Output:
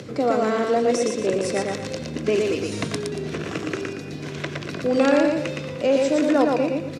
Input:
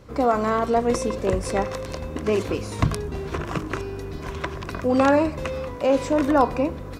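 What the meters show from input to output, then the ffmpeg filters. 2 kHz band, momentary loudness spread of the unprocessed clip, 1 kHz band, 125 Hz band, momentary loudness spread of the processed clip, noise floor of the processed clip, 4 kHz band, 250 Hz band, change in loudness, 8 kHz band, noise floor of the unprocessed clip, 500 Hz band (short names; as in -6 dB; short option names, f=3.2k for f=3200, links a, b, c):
+2.0 dB, 12 LU, -3.5 dB, -3.5 dB, 11 LU, -33 dBFS, +4.5 dB, +1.5 dB, +1.0 dB, +3.5 dB, -35 dBFS, +2.0 dB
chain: -filter_complex "[0:a]highpass=f=120:w=0.5412,highpass=f=120:w=1.3066,acrossover=split=270[a][b];[a]acompressor=threshold=-38dB:ratio=6[c];[c][b]amix=inputs=2:normalize=0,equalizer=f=1k:t=o:w=0.99:g=-13,aecho=1:1:116|232|348|464:0.708|0.241|0.0818|0.0278,acompressor=mode=upward:threshold=-33dB:ratio=2.5,lowpass=8.2k,volume=3.5dB"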